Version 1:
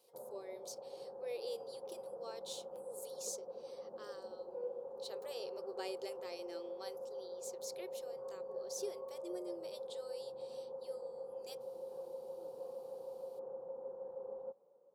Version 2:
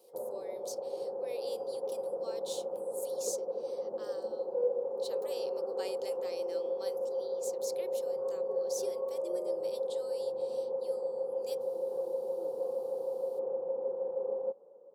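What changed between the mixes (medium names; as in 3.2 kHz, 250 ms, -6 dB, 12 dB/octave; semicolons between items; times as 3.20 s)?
background: add peaking EQ 420 Hz +12.5 dB 2.4 oct; master: add treble shelf 4.9 kHz +7 dB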